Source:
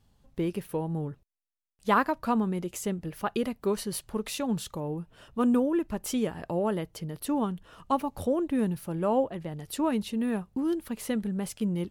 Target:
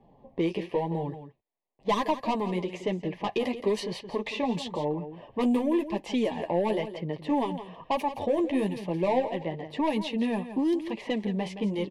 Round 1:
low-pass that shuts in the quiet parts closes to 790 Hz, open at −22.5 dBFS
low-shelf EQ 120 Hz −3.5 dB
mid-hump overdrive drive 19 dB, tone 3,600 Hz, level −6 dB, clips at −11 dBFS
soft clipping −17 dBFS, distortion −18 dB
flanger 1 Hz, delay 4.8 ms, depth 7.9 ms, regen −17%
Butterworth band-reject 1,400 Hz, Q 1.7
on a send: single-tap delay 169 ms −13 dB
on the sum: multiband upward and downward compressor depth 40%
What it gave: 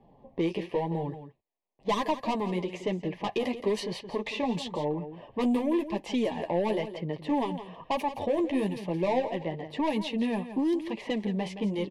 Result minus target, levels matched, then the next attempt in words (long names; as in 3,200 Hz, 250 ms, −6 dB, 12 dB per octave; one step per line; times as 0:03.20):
soft clipping: distortion +10 dB
low-pass that shuts in the quiet parts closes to 790 Hz, open at −22.5 dBFS
low-shelf EQ 120 Hz −3.5 dB
mid-hump overdrive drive 19 dB, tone 3,600 Hz, level −6 dB, clips at −11 dBFS
soft clipping −10.5 dBFS, distortion −29 dB
flanger 1 Hz, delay 4.8 ms, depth 7.9 ms, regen −17%
Butterworth band-reject 1,400 Hz, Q 1.7
on a send: single-tap delay 169 ms −13 dB
on the sum: multiband upward and downward compressor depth 40%